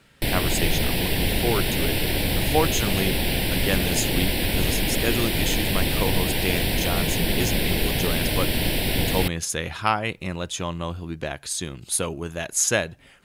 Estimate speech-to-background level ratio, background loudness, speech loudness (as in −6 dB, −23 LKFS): −4.5 dB, −23.5 LKFS, −28.0 LKFS